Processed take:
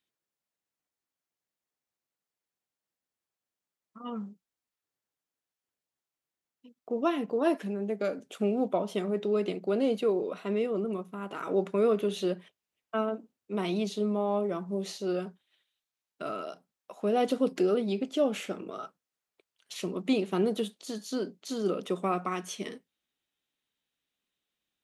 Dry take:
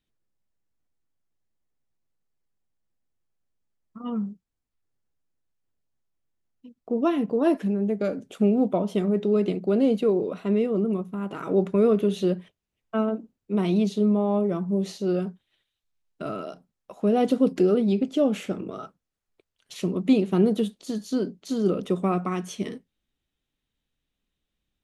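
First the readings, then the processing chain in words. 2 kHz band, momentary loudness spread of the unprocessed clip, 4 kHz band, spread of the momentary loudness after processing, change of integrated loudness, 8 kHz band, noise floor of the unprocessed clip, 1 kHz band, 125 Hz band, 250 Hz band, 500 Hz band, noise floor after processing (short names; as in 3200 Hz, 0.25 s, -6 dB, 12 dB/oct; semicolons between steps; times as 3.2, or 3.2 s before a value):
-0.5 dB, 12 LU, 0.0 dB, 13 LU, -6.0 dB, n/a, -84 dBFS, -1.5 dB, -10.0 dB, -8.5 dB, -4.5 dB, under -85 dBFS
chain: HPF 590 Hz 6 dB/oct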